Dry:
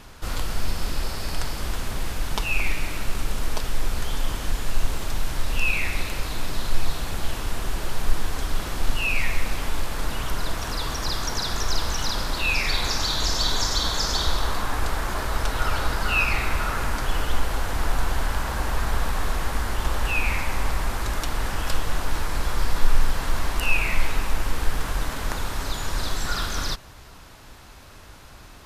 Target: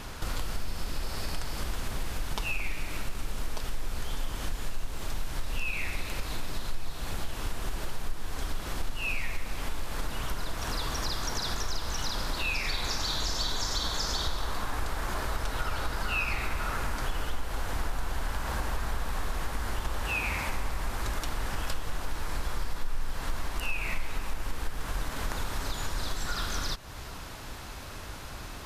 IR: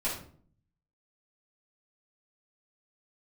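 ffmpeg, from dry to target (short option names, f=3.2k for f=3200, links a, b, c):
-filter_complex "[0:a]asplit=3[a][b][c];[a]afade=t=out:st=20.01:d=0.02[d];[b]highpass=50,afade=t=in:st=20.01:d=0.02,afade=t=out:st=20.48:d=0.02[e];[c]afade=t=in:st=20.48:d=0.02[f];[d][e][f]amix=inputs=3:normalize=0,acompressor=threshold=-35dB:ratio=3,volume=4.5dB"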